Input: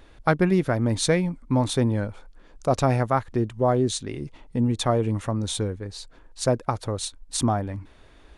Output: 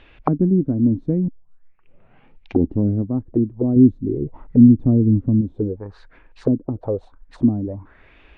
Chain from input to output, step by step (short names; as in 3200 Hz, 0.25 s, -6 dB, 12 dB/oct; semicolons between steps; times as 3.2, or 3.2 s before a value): 1.28 tape start 1.97 s; 3.76–5.41 low shelf 240 Hz +8.5 dB; envelope low-pass 270–3000 Hz down, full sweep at -21 dBFS